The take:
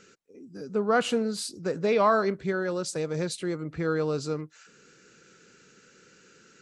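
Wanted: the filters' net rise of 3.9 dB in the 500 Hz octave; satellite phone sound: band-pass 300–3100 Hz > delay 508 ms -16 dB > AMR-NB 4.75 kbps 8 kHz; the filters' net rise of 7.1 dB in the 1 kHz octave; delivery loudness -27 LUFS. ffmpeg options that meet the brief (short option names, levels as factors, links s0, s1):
-af "highpass=300,lowpass=3100,equalizer=f=500:t=o:g=3.5,equalizer=f=1000:t=o:g=8,aecho=1:1:508:0.158,volume=0.75" -ar 8000 -c:a libopencore_amrnb -b:a 4750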